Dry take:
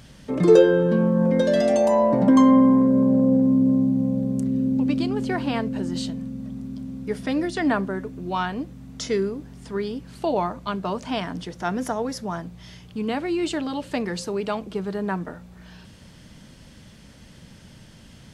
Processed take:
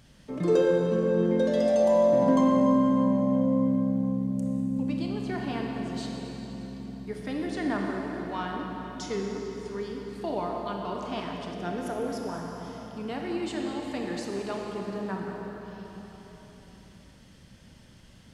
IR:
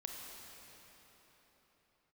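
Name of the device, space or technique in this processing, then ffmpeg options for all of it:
cathedral: -filter_complex "[1:a]atrim=start_sample=2205[a];[0:a][a]afir=irnorm=-1:irlink=0,asettb=1/sr,asplit=3[b][c][d];[b]atrim=end=11.544[e];[c]atrim=start=11.54:end=12.29,asetpts=PTS-STARTPTS,afade=t=in:d=0.004:c=qsin,afade=t=out:st=0.746:d=0.004:c=qsin,equalizer=f=400:t=o:w=0.67:g=6,equalizer=f=1k:t=o:w=0.67:g=-6,equalizer=f=6.3k:t=o:w=0.67:g=-3[f];[d]atrim=start=12.286[g];[e][f]acrossfade=d=0.004:c1=hsin:c2=qsin[h];[h][g]acrossfade=d=0.004:c1=qsin:c2=hsin,volume=-4.5dB"

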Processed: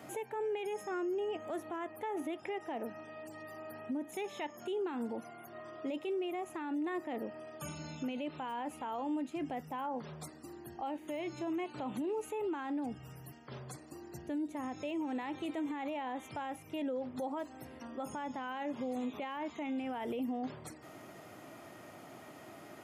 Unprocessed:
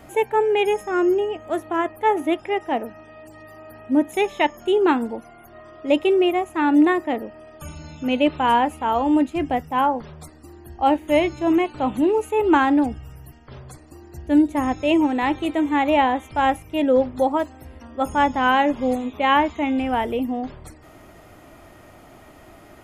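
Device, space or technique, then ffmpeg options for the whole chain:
broadcast voice chain: -af "highpass=f=120:w=0.5412,highpass=f=120:w=1.3066,deesser=0.7,acompressor=threshold=-26dB:ratio=3,equalizer=f=5.7k:t=o:w=0.77:g=2,alimiter=level_in=2dB:limit=-24dB:level=0:latency=1:release=35,volume=-2dB,volume=-4.5dB"

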